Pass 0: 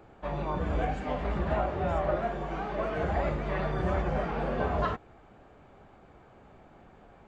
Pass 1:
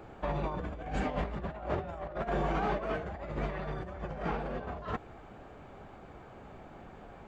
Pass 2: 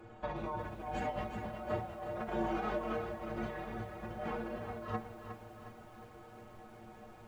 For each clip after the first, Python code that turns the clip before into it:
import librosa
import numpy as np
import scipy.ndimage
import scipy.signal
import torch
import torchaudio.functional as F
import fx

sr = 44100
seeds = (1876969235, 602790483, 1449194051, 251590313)

y1 = fx.over_compress(x, sr, threshold_db=-34.0, ratio=-0.5)
y2 = fx.stiff_resonator(y1, sr, f0_hz=110.0, decay_s=0.21, stiffness=0.008)
y2 = fx.echo_crushed(y2, sr, ms=361, feedback_pct=55, bits=11, wet_db=-8.0)
y2 = y2 * 10.0 ** (4.5 / 20.0)